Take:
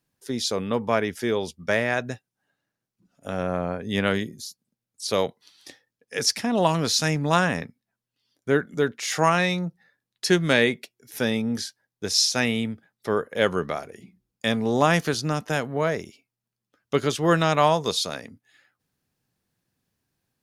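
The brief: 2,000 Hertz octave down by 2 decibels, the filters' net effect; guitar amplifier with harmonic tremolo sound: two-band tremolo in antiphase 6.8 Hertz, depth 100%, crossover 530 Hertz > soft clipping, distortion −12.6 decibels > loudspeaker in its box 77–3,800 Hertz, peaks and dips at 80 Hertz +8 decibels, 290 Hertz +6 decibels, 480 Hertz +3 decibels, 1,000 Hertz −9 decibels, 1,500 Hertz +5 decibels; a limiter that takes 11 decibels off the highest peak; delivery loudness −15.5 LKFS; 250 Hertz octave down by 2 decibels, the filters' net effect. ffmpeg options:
ffmpeg -i in.wav -filter_complex "[0:a]equalizer=frequency=250:width_type=o:gain=-6,equalizer=frequency=2000:width_type=o:gain=-5.5,alimiter=limit=-17.5dB:level=0:latency=1,acrossover=split=530[link_01][link_02];[link_01]aeval=exprs='val(0)*(1-1/2+1/2*cos(2*PI*6.8*n/s))':channel_layout=same[link_03];[link_02]aeval=exprs='val(0)*(1-1/2-1/2*cos(2*PI*6.8*n/s))':channel_layout=same[link_04];[link_03][link_04]amix=inputs=2:normalize=0,asoftclip=threshold=-29dB,highpass=77,equalizer=frequency=80:width_type=q:width=4:gain=8,equalizer=frequency=290:width_type=q:width=4:gain=6,equalizer=frequency=480:width_type=q:width=4:gain=3,equalizer=frequency=1000:width_type=q:width=4:gain=-9,equalizer=frequency=1500:width_type=q:width=4:gain=5,lowpass=frequency=3800:width=0.5412,lowpass=frequency=3800:width=1.3066,volume=22dB" out.wav

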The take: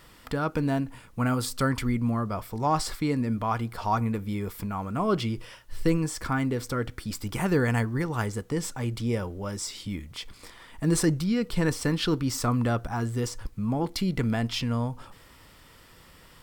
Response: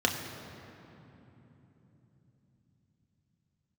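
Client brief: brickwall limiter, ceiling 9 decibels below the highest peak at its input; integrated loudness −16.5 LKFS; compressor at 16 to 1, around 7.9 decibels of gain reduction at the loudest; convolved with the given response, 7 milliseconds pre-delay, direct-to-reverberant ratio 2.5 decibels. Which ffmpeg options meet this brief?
-filter_complex "[0:a]acompressor=threshold=-26dB:ratio=16,alimiter=level_in=2dB:limit=-24dB:level=0:latency=1,volume=-2dB,asplit=2[link_01][link_02];[1:a]atrim=start_sample=2205,adelay=7[link_03];[link_02][link_03]afir=irnorm=-1:irlink=0,volume=-13.5dB[link_04];[link_01][link_04]amix=inputs=2:normalize=0,volume=16dB"

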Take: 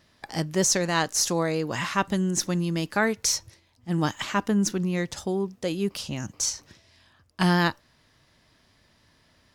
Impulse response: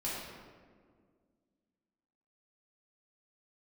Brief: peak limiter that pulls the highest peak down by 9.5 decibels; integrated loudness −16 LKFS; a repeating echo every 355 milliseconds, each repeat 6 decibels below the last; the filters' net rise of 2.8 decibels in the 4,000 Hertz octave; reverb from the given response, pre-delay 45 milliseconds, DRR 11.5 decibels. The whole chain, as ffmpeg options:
-filter_complex "[0:a]equalizer=frequency=4000:width_type=o:gain=4,alimiter=limit=-17dB:level=0:latency=1,aecho=1:1:355|710|1065|1420|1775|2130:0.501|0.251|0.125|0.0626|0.0313|0.0157,asplit=2[link_01][link_02];[1:a]atrim=start_sample=2205,adelay=45[link_03];[link_02][link_03]afir=irnorm=-1:irlink=0,volume=-15.5dB[link_04];[link_01][link_04]amix=inputs=2:normalize=0,volume=11dB"

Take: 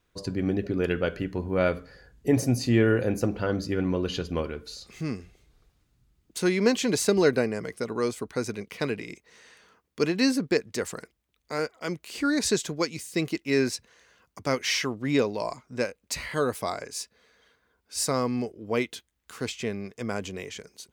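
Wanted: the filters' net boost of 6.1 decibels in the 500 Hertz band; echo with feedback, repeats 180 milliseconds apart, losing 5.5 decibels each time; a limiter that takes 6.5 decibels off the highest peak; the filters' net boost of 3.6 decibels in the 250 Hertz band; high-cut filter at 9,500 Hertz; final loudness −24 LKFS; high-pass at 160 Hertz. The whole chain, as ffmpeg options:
ffmpeg -i in.wav -af "highpass=160,lowpass=9500,equalizer=frequency=250:width_type=o:gain=3,equalizer=frequency=500:width_type=o:gain=6.5,alimiter=limit=-11dB:level=0:latency=1,aecho=1:1:180|360|540|720|900|1080|1260:0.531|0.281|0.149|0.079|0.0419|0.0222|0.0118" out.wav

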